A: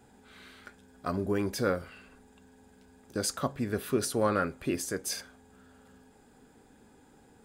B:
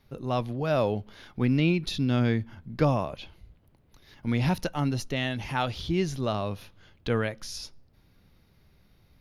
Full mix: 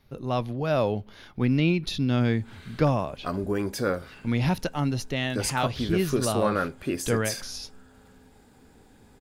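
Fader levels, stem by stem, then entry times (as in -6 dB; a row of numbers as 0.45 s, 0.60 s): +2.0 dB, +1.0 dB; 2.20 s, 0.00 s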